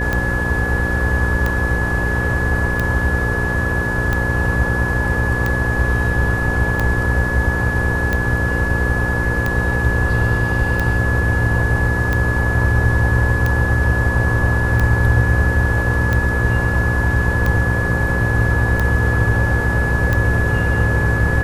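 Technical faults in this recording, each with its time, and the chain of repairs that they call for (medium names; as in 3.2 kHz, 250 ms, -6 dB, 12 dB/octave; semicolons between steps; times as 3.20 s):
buzz 60 Hz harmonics 9 -22 dBFS
tick 45 rpm -7 dBFS
whine 1.7 kHz -21 dBFS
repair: de-click; de-hum 60 Hz, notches 9; band-stop 1.7 kHz, Q 30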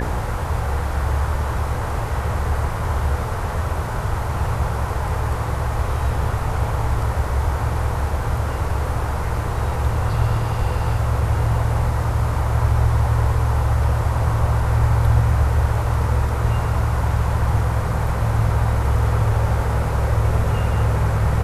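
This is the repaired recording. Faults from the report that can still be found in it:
nothing left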